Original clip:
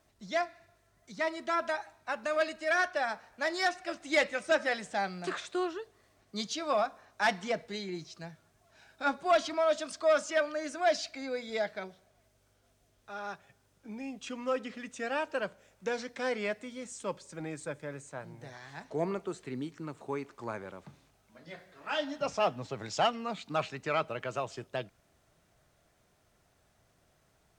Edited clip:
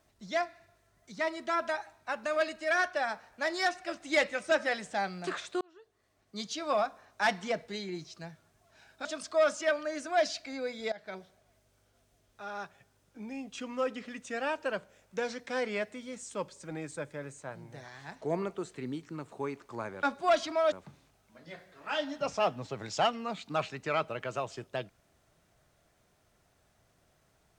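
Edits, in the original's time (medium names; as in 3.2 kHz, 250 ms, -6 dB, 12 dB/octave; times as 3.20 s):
5.61–6.71 s: fade in
9.05–9.74 s: move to 20.72 s
11.61–11.87 s: fade in, from -20 dB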